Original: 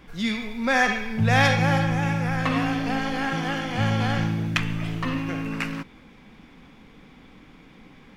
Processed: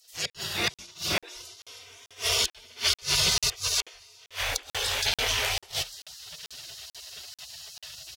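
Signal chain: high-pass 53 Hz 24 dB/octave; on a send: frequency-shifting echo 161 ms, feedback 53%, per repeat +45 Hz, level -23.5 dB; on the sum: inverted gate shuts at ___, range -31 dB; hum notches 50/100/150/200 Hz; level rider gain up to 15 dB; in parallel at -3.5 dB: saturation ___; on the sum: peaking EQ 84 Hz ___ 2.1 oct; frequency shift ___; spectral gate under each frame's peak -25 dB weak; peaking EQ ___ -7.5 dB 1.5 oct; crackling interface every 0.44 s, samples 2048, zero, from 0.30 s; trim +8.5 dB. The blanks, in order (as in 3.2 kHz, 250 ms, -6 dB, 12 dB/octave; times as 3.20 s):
-15 dBFS, -16.5 dBFS, -8 dB, +35 Hz, 1.2 kHz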